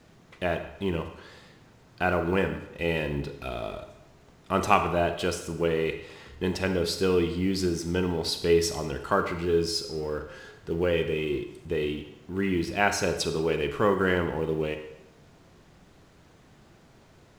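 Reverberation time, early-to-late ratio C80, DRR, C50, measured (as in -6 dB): 0.90 s, 11.0 dB, 7.0 dB, 9.0 dB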